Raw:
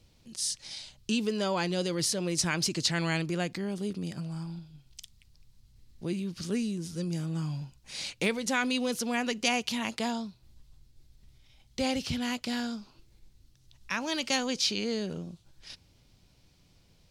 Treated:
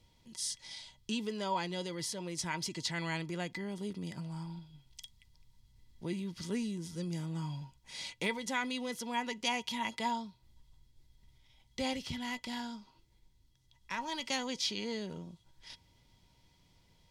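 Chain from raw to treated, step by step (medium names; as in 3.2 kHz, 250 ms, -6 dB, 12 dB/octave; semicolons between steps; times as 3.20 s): gain riding within 3 dB 2 s; small resonant body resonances 940/2000/3300 Hz, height 17 dB, ringing for 90 ms; 11.93–14.26 s: valve stage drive 18 dB, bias 0.5; trim -7.5 dB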